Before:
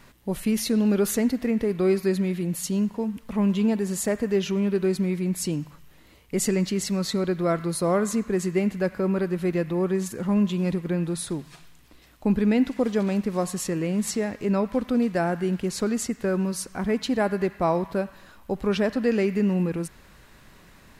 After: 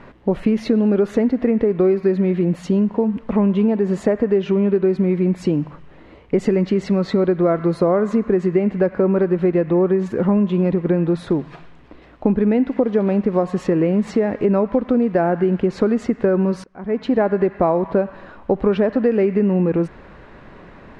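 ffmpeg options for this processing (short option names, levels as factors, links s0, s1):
-filter_complex "[0:a]asplit=2[s0][s1];[s0]atrim=end=16.64,asetpts=PTS-STARTPTS,afade=t=out:st=16.636:d=0.004:c=hsin:silence=0.0749894[s2];[s1]atrim=start=16.64,asetpts=PTS-STARTPTS,afade=t=in:d=0.56:c=qua:silence=0.0749894[s3];[s2][s3]concat=n=2:v=0:a=1,lowpass=2300,equalizer=f=470:w=0.57:g=7.5,acompressor=threshold=0.0891:ratio=6,volume=2.37"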